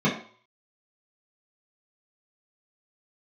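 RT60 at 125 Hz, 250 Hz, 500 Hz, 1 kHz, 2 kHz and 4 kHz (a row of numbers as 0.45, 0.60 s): 0.35, 0.40, 0.45, 0.55, 0.45, 0.50 s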